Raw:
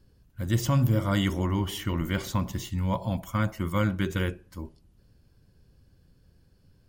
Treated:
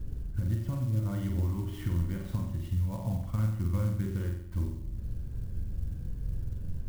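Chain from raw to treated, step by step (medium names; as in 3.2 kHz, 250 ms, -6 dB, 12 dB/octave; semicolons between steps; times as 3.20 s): RIAA curve playback; compression 16:1, threshold -37 dBFS, peak gain reduction 29.5 dB; flutter echo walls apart 7.9 m, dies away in 0.68 s; sampling jitter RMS 0.041 ms; trim +8 dB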